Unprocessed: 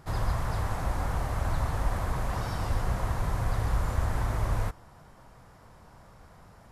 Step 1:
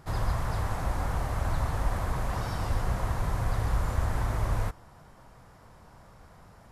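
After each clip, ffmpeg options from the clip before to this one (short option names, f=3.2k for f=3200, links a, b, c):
-af anull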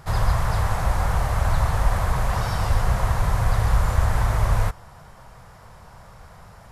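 -af "equalizer=f=290:w=1.7:g=-10.5,volume=8.5dB"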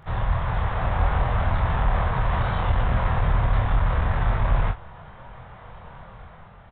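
-af "dynaudnorm=f=200:g=7:m=6dB,aresample=8000,asoftclip=type=tanh:threshold=-11.5dB,aresample=44100,aecho=1:1:25|46:0.668|0.299,volume=-4dB"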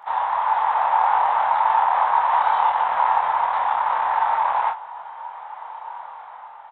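-af "highpass=f=880:t=q:w=8.3"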